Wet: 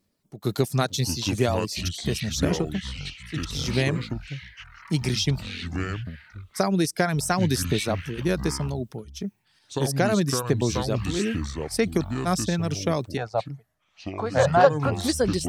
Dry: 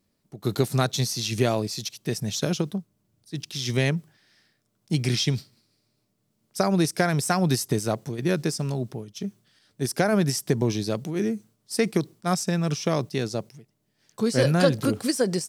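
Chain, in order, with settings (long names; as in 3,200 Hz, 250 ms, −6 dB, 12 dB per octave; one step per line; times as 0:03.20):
reverb reduction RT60 0.58 s
0:13.17–0:14.92: drawn EQ curve 110 Hz 0 dB, 300 Hz −18 dB, 730 Hz +14 dB, 12,000 Hz −25 dB
delay with pitch and tempo change per echo 433 ms, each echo −6 semitones, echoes 3, each echo −6 dB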